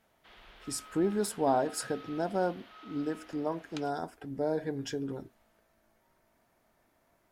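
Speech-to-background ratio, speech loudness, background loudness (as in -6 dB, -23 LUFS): 18.5 dB, -33.5 LUFS, -52.0 LUFS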